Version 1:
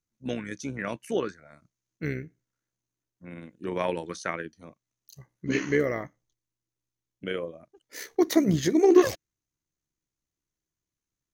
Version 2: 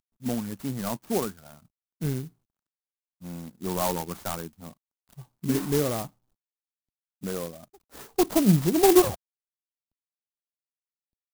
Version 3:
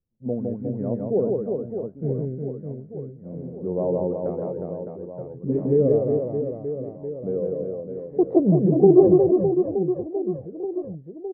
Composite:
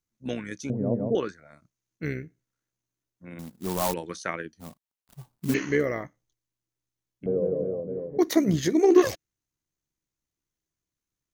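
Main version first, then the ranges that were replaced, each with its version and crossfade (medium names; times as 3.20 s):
1
0.70–1.15 s: from 3
3.39–3.94 s: from 2
4.60–5.54 s: from 2
7.26–8.18 s: from 3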